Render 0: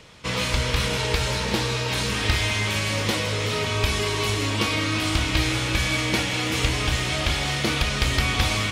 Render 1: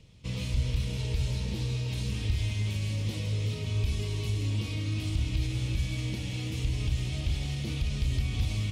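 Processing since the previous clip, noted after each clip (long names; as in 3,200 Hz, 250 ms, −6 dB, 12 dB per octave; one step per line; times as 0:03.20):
brickwall limiter −15 dBFS, peak gain reduction 5.5 dB
drawn EQ curve 110 Hz 0 dB, 1,500 Hz −26 dB, 2,600 Hz −14 dB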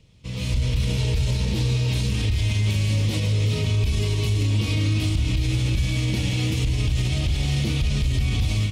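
automatic gain control gain up to 12 dB
brickwall limiter −14.5 dBFS, peak gain reduction 9 dB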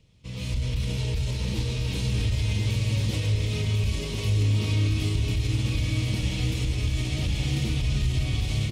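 single-tap delay 1,046 ms −3.5 dB
level −5 dB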